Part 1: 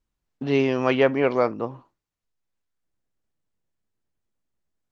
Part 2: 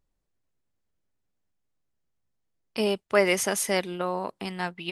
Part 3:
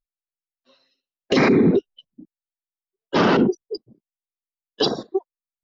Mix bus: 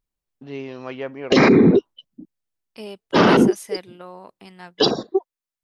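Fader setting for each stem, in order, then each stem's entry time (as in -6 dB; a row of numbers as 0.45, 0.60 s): -11.5, -10.0, +3.0 dB; 0.00, 0.00, 0.00 s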